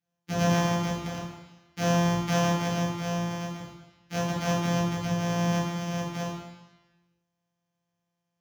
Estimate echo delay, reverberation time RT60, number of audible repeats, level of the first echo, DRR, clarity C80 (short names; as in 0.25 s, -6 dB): none, 1.1 s, none, none, -6.5 dB, 3.5 dB